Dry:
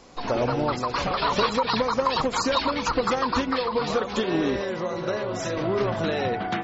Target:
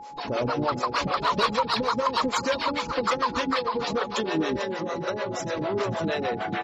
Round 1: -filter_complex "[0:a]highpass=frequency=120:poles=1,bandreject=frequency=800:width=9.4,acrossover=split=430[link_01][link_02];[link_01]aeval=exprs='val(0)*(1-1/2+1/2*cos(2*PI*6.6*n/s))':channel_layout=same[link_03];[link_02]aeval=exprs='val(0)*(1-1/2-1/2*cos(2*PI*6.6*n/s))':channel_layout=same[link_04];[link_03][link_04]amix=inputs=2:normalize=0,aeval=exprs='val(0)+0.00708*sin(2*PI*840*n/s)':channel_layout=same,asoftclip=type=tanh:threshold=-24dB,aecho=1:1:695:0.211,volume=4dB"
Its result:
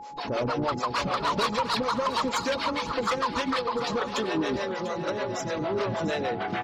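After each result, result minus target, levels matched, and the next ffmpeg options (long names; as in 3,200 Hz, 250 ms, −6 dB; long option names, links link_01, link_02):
echo 253 ms late; soft clipping: distortion +8 dB
-filter_complex "[0:a]highpass=frequency=120:poles=1,bandreject=frequency=800:width=9.4,acrossover=split=430[link_01][link_02];[link_01]aeval=exprs='val(0)*(1-1/2+1/2*cos(2*PI*6.6*n/s))':channel_layout=same[link_03];[link_02]aeval=exprs='val(0)*(1-1/2-1/2*cos(2*PI*6.6*n/s))':channel_layout=same[link_04];[link_03][link_04]amix=inputs=2:normalize=0,aeval=exprs='val(0)+0.00708*sin(2*PI*840*n/s)':channel_layout=same,asoftclip=type=tanh:threshold=-24dB,aecho=1:1:442:0.211,volume=4dB"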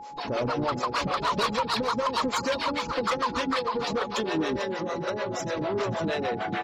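soft clipping: distortion +8 dB
-filter_complex "[0:a]highpass=frequency=120:poles=1,bandreject=frequency=800:width=9.4,acrossover=split=430[link_01][link_02];[link_01]aeval=exprs='val(0)*(1-1/2+1/2*cos(2*PI*6.6*n/s))':channel_layout=same[link_03];[link_02]aeval=exprs='val(0)*(1-1/2-1/2*cos(2*PI*6.6*n/s))':channel_layout=same[link_04];[link_03][link_04]amix=inputs=2:normalize=0,aeval=exprs='val(0)+0.00708*sin(2*PI*840*n/s)':channel_layout=same,asoftclip=type=tanh:threshold=-17.5dB,aecho=1:1:442:0.211,volume=4dB"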